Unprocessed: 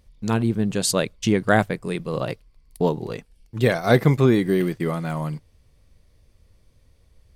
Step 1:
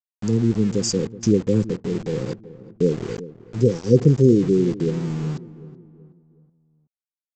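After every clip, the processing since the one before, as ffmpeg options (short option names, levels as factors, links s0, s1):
-filter_complex "[0:a]afftfilt=real='re*(1-between(b*sr/4096,530,4600))':imag='im*(1-between(b*sr/4096,530,4600))':win_size=4096:overlap=0.75,aresample=16000,aeval=exprs='val(0)*gte(abs(val(0)),0.0188)':c=same,aresample=44100,asplit=2[s0][s1];[s1]adelay=375,lowpass=f=1100:p=1,volume=0.158,asplit=2[s2][s3];[s3]adelay=375,lowpass=f=1100:p=1,volume=0.45,asplit=2[s4][s5];[s5]adelay=375,lowpass=f=1100:p=1,volume=0.45,asplit=2[s6][s7];[s7]adelay=375,lowpass=f=1100:p=1,volume=0.45[s8];[s0][s2][s4][s6][s8]amix=inputs=5:normalize=0,volume=1.33"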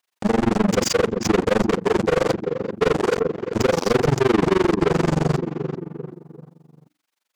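-filter_complex "[0:a]asplit=2[s0][s1];[s1]highpass=f=720:p=1,volume=112,asoftclip=type=tanh:threshold=0.841[s2];[s0][s2]amix=inputs=2:normalize=0,lowpass=f=3300:p=1,volume=0.501,bandreject=f=60:t=h:w=6,bandreject=f=120:t=h:w=6,bandreject=f=180:t=h:w=6,bandreject=f=240:t=h:w=6,bandreject=f=300:t=h:w=6,tremolo=f=23:d=1,volume=0.531"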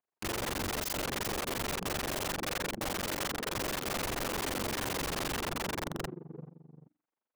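-af "adynamicsmooth=sensitivity=7:basefreq=1000,aeval=exprs='(mod(17.8*val(0)+1,2)-1)/17.8':c=same,volume=0.631"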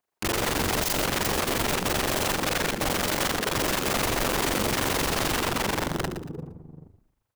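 -filter_complex "[0:a]asplit=5[s0][s1][s2][s3][s4];[s1]adelay=116,afreqshift=-64,volume=0.335[s5];[s2]adelay=232,afreqshift=-128,volume=0.111[s6];[s3]adelay=348,afreqshift=-192,volume=0.0363[s7];[s4]adelay=464,afreqshift=-256,volume=0.012[s8];[s0][s5][s6][s7][s8]amix=inputs=5:normalize=0,volume=2.66"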